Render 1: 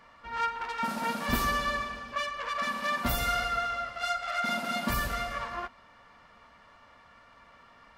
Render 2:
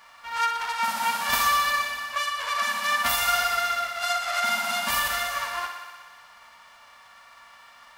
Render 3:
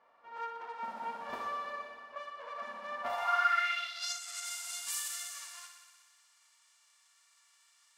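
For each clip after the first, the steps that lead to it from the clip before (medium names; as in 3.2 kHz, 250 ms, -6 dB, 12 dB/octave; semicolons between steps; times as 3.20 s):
formants flattened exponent 0.6; resonant low shelf 580 Hz -11.5 dB, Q 1.5; thinning echo 61 ms, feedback 77%, high-pass 170 Hz, level -8.5 dB; trim +3.5 dB
band-pass sweep 420 Hz -> 7.8 kHz, 2.95–4.23 s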